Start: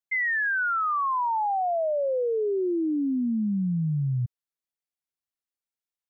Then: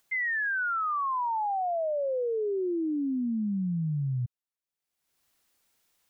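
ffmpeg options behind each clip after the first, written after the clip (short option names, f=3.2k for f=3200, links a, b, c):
-af "acompressor=mode=upward:threshold=-49dB:ratio=2.5,volume=-3.5dB"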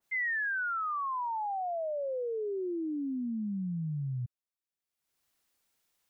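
-af "adynamicequalizer=threshold=0.00631:dfrequency=2000:dqfactor=0.7:tfrequency=2000:tqfactor=0.7:attack=5:release=100:ratio=0.375:range=3:mode=boostabove:tftype=highshelf,volume=-5dB"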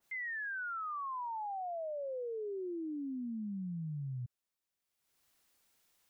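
-af "alimiter=level_in=16dB:limit=-24dB:level=0:latency=1,volume=-16dB,volume=3.5dB"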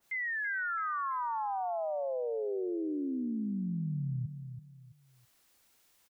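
-af "aecho=1:1:331|662|993:0.355|0.106|0.0319,volume=5dB"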